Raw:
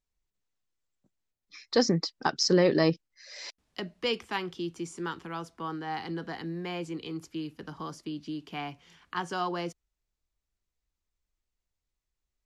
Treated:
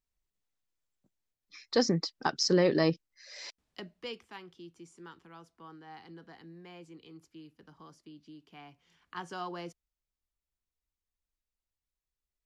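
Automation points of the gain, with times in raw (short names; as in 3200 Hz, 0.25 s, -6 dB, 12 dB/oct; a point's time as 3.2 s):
3.45 s -2.5 dB
4.32 s -14.5 dB
8.65 s -14.5 dB
9.19 s -7.5 dB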